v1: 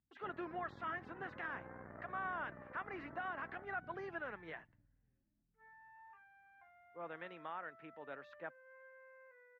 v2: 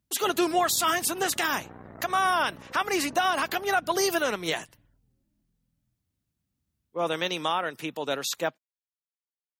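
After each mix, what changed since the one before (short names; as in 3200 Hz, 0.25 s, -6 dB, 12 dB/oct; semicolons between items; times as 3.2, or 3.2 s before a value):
speech +12.0 dB; second sound: muted; master: remove ladder low-pass 2100 Hz, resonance 45%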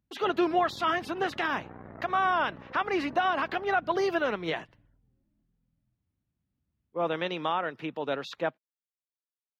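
speech: add air absorption 320 m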